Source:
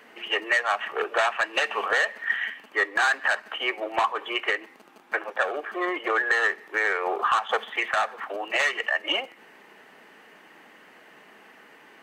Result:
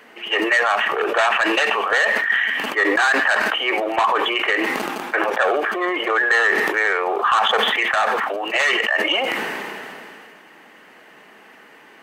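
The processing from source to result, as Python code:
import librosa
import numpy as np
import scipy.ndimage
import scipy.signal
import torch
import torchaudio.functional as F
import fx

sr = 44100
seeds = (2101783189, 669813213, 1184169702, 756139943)

y = fx.sustainer(x, sr, db_per_s=22.0)
y = y * librosa.db_to_amplitude(4.5)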